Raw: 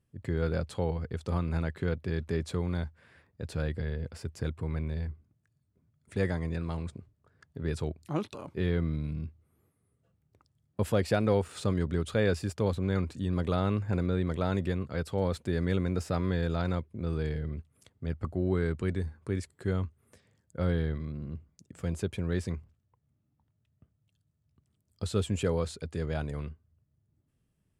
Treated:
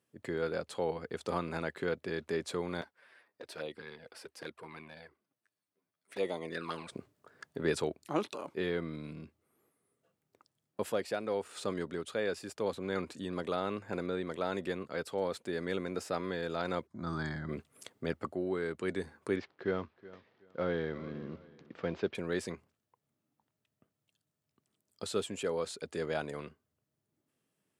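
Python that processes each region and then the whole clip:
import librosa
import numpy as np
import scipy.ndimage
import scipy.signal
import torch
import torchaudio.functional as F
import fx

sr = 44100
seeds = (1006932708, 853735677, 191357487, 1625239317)

y = fx.chain(x, sr, fx.highpass(hz=480.0, slope=6),
    fx.peak_eq(hz=7100.0, db=-9.5, octaves=0.22),
    fx.env_flanger(rest_ms=11.1, full_db=-34.5), at=(2.81, 6.92))
y = fx.chain(y, sr, fx.lowpass(hz=7100.0, slope=24),
    fx.fixed_phaser(hz=1100.0, stages=4), at=(16.87, 17.49))
y = fx.chain(y, sr, fx.cvsd(bps=64000),
    fx.bessel_lowpass(hz=2800.0, order=8),
    fx.echo_feedback(ms=372, feedback_pct=26, wet_db=-19.0), at=(19.36, 22.15))
y = scipy.signal.sosfilt(scipy.signal.butter(2, 320.0, 'highpass', fs=sr, output='sos'), y)
y = fx.rider(y, sr, range_db=10, speed_s=0.5)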